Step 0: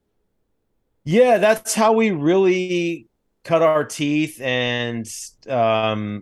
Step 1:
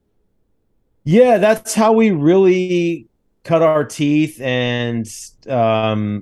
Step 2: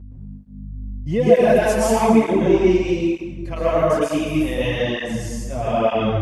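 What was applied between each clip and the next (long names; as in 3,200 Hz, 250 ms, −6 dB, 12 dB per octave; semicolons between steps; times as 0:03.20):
low-shelf EQ 460 Hz +7.5 dB
mains hum 50 Hz, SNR 11 dB; dense smooth reverb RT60 1.4 s, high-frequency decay 0.75×, pre-delay 105 ms, DRR −7.5 dB; through-zero flanger with one copy inverted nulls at 1.1 Hz, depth 7.4 ms; level −8.5 dB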